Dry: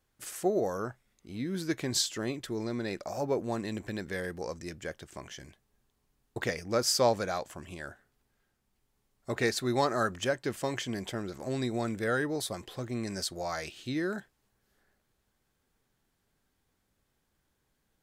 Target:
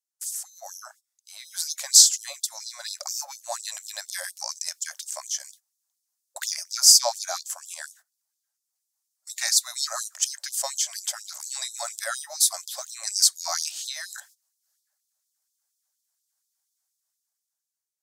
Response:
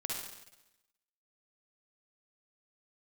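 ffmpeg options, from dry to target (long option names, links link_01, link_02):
-filter_complex "[0:a]dynaudnorm=framelen=350:gausssize=7:maxgain=12.5dB,highshelf=frequency=4100:width_type=q:width=1.5:gain=13.5,asplit=2[link_01][link_02];[link_02]acompressor=threshold=-27dB:ratio=10,volume=0dB[link_03];[link_01][link_03]amix=inputs=2:normalize=0,agate=range=-18dB:threshold=-38dB:ratio=16:detection=peak,afftfilt=real='re*gte(b*sr/1024,530*pow(3400/530,0.5+0.5*sin(2*PI*4.2*pts/sr)))':imag='im*gte(b*sr/1024,530*pow(3400/530,0.5+0.5*sin(2*PI*4.2*pts/sr)))':win_size=1024:overlap=0.75,volume=-9.5dB"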